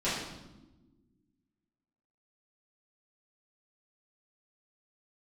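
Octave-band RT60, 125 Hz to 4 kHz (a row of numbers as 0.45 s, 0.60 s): 2.0 s, 2.1 s, 1.4 s, 0.95 s, 0.80 s, 0.80 s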